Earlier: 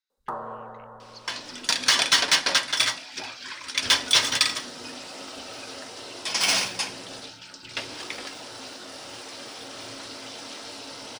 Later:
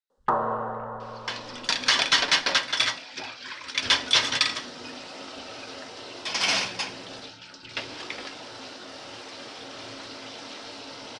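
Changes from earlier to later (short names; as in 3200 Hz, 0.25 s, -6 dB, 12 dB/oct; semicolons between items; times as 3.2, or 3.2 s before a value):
speech -6.5 dB; first sound +9.0 dB; master: add LPF 5100 Hz 12 dB/oct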